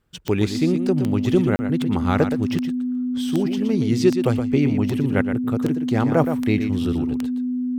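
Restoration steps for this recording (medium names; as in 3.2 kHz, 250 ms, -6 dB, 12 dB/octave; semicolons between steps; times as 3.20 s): de-click; band-stop 250 Hz, Q 30; interpolate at 1.56 s, 30 ms; inverse comb 119 ms -8.5 dB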